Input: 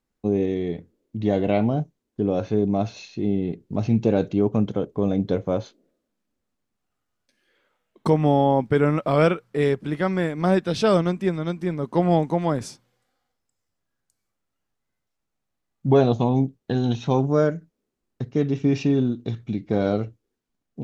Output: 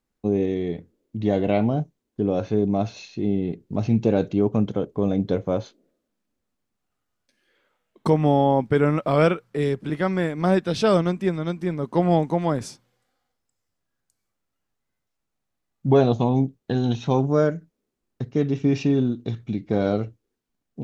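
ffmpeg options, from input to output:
-filter_complex "[0:a]asettb=1/sr,asplit=3[a][b][c];[a]atrim=end=9.504[d];[b]atrim=start=9.5:end=9.9,asetpts=PTS-STARTPTS,afade=t=in:d=0.004:c=qsin,afade=t=out:st=0.396:d=0.004:c=qsin,acrossover=split=380|3000[e][f][g];[f]acompressor=threshold=-28dB:ratio=6:attack=3.2:release=140:knee=2.83:detection=peak[h];[e][h][g]amix=inputs=3:normalize=0[i];[c]atrim=start=9.896[j];[d][i]acrossfade=d=0.004:c1=hsin:c2=qsin[k];[k][j]acrossfade=d=0.004:c1=qsin:c2=hsin"

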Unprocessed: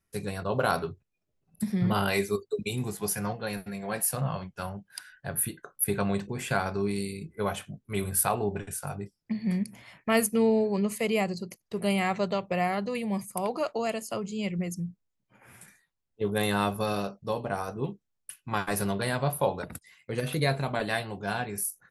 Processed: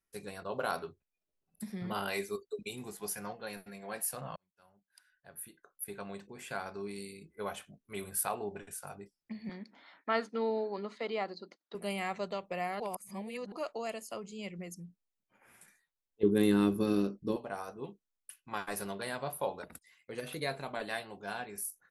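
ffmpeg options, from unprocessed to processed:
-filter_complex "[0:a]asettb=1/sr,asplit=3[a][b][c];[a]atrim=end=9.494[d];[b]atrim=start=9.49:end=11.75,asetpts=PTS-STARTPTS,afade=t=in:d=0.004:c=qsin,afade=t=out:st=2.256:d=0.004:c=qsin,highpass=270,equalizer=f=280:t=q:w=4:g=9,equalizer=f=870:t=q:w=4:g=5,equalizer=f=1.4k:t=q:w=4:g=9,equalizer=f=2.6k:t=q:w=4:g=-8,equalizer=f=3.8k:t=q:w=4:g=8,lowpass=f=4.5k:w=0.5412,lowpass=f=4.5k:w=1.3066[e];[c]atrim=start=11.746[f];[d][e]acrossfade=d=0.004:c1=hsin:c2=qsin[g];[g][f]acrossfade=d=0.004:c1=qsin:c2=hsin,asettb=1/sr,asplit=3[h][i][j];[h]atrim=end=16.234[k];[i]atrim=start=16.23:end=17.36,asetpts=PTS-STARTPTS,afade=t=in:d=0.004:c=qsin,afade=t=out:st=1.126:d=0.004:c=qsin,lowshelf=f=470:t=q:w=3:g=12[l];[j]atrim=start=17.356[m];[k][l]acrossfade=d=0.004:c1=hsin:c2=qsin[n];[n][m]acrossfade=d=0.004:c1=qsin:c2=hsin,asplit=4[o][p][q][r];[o]atrim=end=4.36,asetpts=PTS-STARTPTS,afade=t=out:st=4.356:d=0.004:c=hsin[s];[p]atrim=start=4.36:end=12.802,asetpts=PTS-STARTPTS,afade=t=in:d=3.01[t];[q]atrim=start=12.798:end=13.522,asetpts=PTS-STARTPTS,areverse[u];[r]atrim=start=13.518[v];[s][t]concat=n=2:v=0:a=1[w];[w][u]acrossfade=d=0.004:c1=hsin:c2=hsin[x];[x][v]acrossfade=d=0.004:c1=hsin:c2=hsin,equalizer=f=110:w=1:g=-12.5,volume=-7.5dB"

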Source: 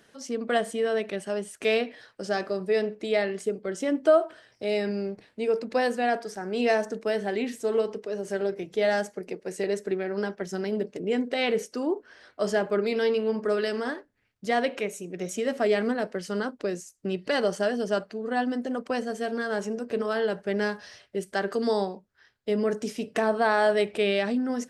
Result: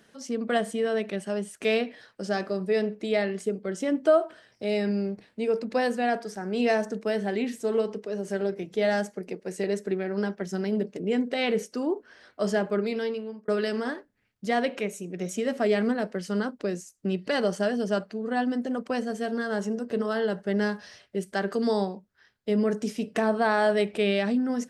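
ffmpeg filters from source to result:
-filter_complex "[0:a]asettb=1/sr,asplit=3[a][b][c];[a]atrim=end=19.264[d];[b]atrim=start=19.26:end=20.74,asetpts=PTS-STARTPTS,afade=t=in:d=0.004:c=qsin,afade=t=out:st=1.476:d=0.004:c=qsin,bandreject=f=2.4k:w=8.1[e];[c]atrim=start=20.736[f];[d][e]acrossfade=d=0.004:c1=hsin:c2=qsin[g];[g][f]acrossfade=d=0.004:c1=qsin:c2=hsin,asplit=2[h][i];[h]atrim=end=13.48,asetpts=PTS-STARTPTS,afade=t=out:st=12.41:d=1.07:c=qsin[j];[i]atrim=start=13.48,asetpts=PTS-STARTPTS,afade=t=in:d=0.004:c=hsin[k];[j][k]concat=n=2:v=0:a=1,equalizer=f=200:w=2.4:g=5.5,volume=-1dB"

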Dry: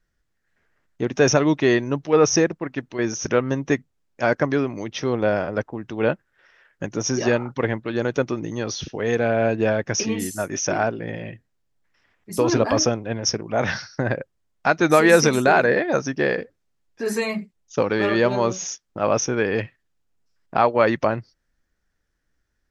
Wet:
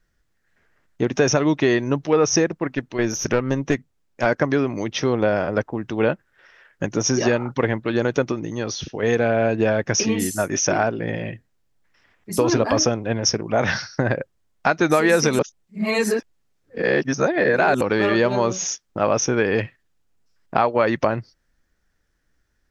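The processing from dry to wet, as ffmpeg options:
-filter_complex "[0:a]asettb=1/sr,asplit=3[a][b][c];[a]atrim=end=2.734[d];[b]atrim=start=2.73:end=4.26,asetpts=PTS-STARTPTS,afade=t=in:d=0.004:c=qsin,afade=t=out:st=1.526:d=0.004:c=qsin,aeval=exprs='(tanh(3.98*val(0)+0.45)-tanh(0.45))/3.98':c=same[e];[c]atrim=start=4.256[f];[d][e]acrossfade=d=0.004:c1=hsin:c2=qsin[g];[g][f]acrossfade=d=0.004:c1=qsin:c2=hsin,asplit=5[h][i][j][k][l];[h]atrim=end=8.322[m];[i]atrim=start=8.318:end=9.032,asetpts=PTS-STARTPTS,volume=-4dB[n];[j]atrim=start=9.028:end=15.392[o];[k]atrim=start=15.388:end=17.812,asetpts=PTS-STARTPTS,areverse[p];[l]atrim=start=17.808[q];[m][n]acrossfade=d=0.004:c1=hsin:c2=hsin[r];[r][o]acrossfade=d=0.004:c1=hsin:c2=hsin[s];[s][p]acrossfade=d=0.004:c1=hsin:c2=hsin[t];[t][q]acrossfade=d=0.004:c1=hsin:c2=hsin,acompressor=threshold=-20dB:ratio=3,volume=4.5dB"

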